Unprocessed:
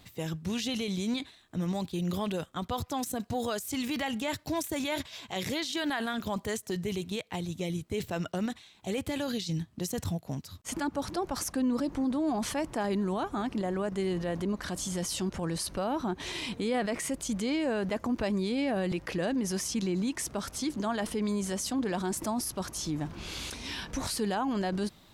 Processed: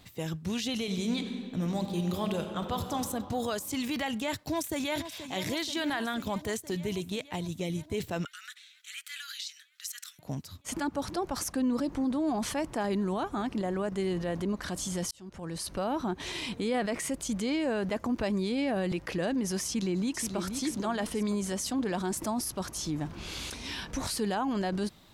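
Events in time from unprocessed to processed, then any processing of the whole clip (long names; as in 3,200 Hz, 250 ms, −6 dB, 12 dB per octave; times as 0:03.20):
0:00.75–0:02.95: thrown reverb, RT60 2.7 s, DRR 5 dB
0:04.37–0:04.97: delay throw 480 ms, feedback 75%, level −11 dB
0:08.25–0:10.19: Butterworth high-pass 1,300 Hz 72 dB per octave
0:15.11–0:15.81: fade in
0:19.66–0:20.38: delay throw 480 ms, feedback 35%, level −7 dB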